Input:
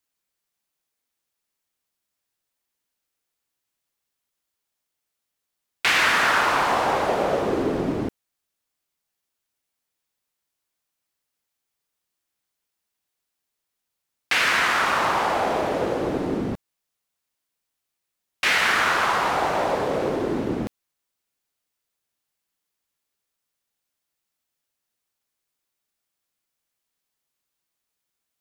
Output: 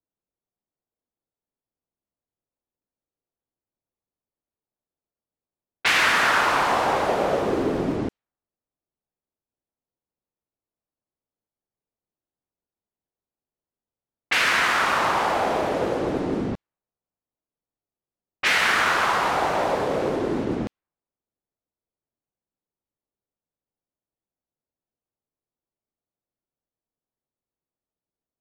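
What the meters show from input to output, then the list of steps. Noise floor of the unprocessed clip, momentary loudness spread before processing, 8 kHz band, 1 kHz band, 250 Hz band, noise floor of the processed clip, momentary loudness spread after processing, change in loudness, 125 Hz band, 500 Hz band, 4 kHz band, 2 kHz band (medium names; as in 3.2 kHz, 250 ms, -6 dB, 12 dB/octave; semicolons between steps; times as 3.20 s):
-82 dBFS, 9 LU, 0.0 dB, 0.0 dB, 0.0 dB, under -85 dBFS, 9 LU, 0.0 dB, 0.0 dB, 0.0 dB, 0.0 dB, 0.0 dB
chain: level-controlled noise filter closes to 640 Hz, open at -20 dBFS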